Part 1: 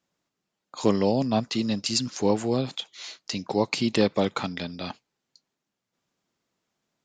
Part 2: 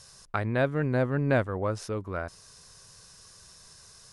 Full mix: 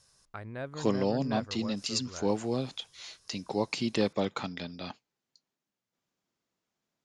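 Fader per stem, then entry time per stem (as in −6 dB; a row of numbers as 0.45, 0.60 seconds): −6.0, −13.0 decibels; 0.00, 0.00 seconds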